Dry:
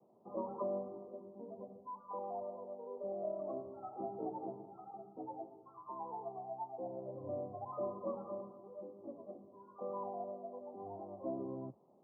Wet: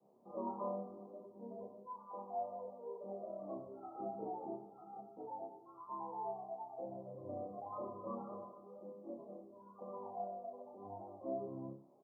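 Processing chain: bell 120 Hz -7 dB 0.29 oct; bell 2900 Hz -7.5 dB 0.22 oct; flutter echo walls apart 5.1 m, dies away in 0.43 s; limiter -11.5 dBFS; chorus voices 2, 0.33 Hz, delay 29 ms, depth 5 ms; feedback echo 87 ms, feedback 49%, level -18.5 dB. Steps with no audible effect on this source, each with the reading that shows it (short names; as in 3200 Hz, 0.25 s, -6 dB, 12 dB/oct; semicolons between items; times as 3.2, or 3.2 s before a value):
bell 2900 Hz: input band ends at 1400 Hz; limiter -11.5 dBFS: input peak -26.5 dBFS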